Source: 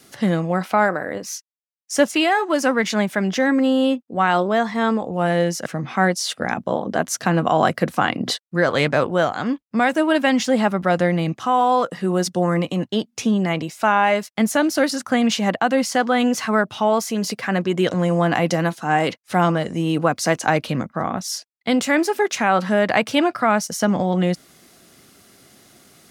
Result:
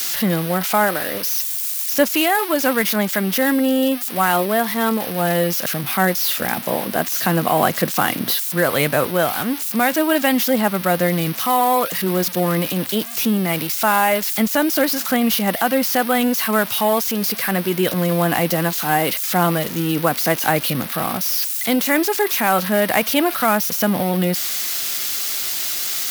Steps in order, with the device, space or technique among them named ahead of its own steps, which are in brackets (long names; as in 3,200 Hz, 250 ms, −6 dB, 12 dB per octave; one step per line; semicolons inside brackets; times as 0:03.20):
budget class-D amplifier (gap after every zero crossing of 0.06 ms; spike at every zero crossing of −9.5 dBFS)